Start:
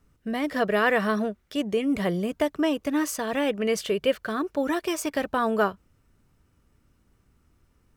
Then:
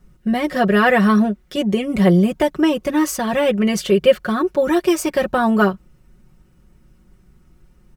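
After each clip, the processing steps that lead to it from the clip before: low shelf 340 Hz +8 dB; comb 5.5 ms, depth 85%; gain +4 dB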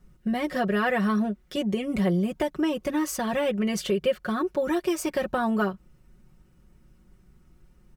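compressor 2:1, threshold -20 dBFS, peak gain reduction 7.5 dB; gain -5 dB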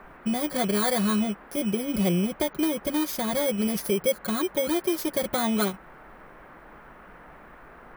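FFT order left unsorted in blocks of 16 samples; band noise 150–1700 Hz -49 dBFS

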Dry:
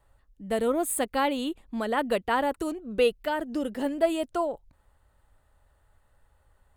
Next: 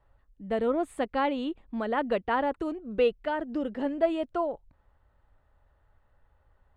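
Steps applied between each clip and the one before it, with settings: Bessel low-pass 2400 Hz, order 2; gain -1 dB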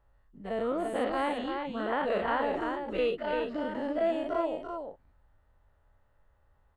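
spectral dilation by 0.12 s; echo 0.341 s -5 dB; gain -7.5 dB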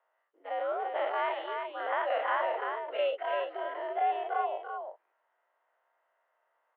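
mistuned SSB +84 Hz 400–3100 Hz

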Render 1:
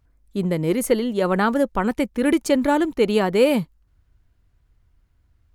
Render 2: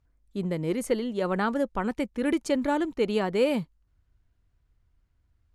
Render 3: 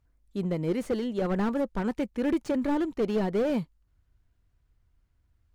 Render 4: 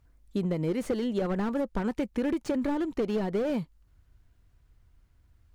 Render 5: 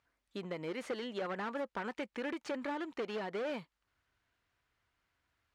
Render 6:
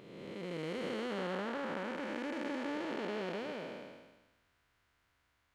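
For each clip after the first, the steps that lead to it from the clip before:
LPF 9200 Hz 12 dB/oct; gain -7 dB
slew limiter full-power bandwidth 32 Hz
compressor, threshold -32 dBFS, peak gain reduction 10 dB; gain +6.5 dB
band-pass 2000 Hz, Q 0.62
time blur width 0.679 s; gain +6.5 dB

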